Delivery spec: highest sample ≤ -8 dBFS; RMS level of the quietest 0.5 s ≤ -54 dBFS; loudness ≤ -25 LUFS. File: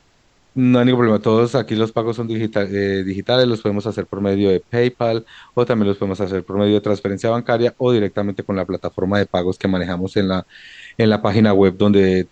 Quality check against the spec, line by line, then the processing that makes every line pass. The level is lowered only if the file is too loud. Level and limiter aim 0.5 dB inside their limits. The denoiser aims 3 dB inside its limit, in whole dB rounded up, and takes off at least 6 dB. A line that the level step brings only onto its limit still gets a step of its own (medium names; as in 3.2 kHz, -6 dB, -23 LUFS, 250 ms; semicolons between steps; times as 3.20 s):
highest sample -3.0 dBFS: fail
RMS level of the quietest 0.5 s -56 dBFS: pass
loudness -18.0 LUFS: fail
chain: trim -7.5 dB